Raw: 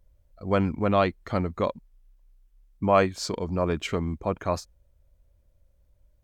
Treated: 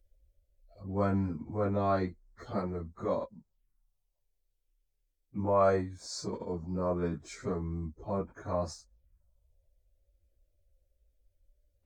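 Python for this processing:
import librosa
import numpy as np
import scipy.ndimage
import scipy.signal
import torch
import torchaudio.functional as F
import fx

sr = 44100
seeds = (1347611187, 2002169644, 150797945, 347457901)

y = fx.env_phaser(x, sr, low_hz=160.0, high_hz=2900.0, full_db=-28.5)
y = fx.stretch_vocoder_free(y, sr, factor=1.9)
y = y * 10.0 ** (-4.0 / 20.0)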